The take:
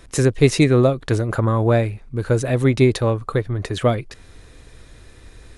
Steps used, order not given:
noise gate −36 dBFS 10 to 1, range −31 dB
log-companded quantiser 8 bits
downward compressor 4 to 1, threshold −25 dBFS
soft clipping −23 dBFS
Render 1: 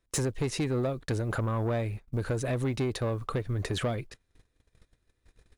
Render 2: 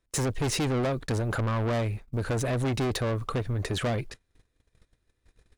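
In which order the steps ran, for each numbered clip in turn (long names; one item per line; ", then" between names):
log-companded quantiser, then downward compressor, then noise gate, then soft clipping
log-companded quantiser, then soft clipping, then downward compressor, then noise gate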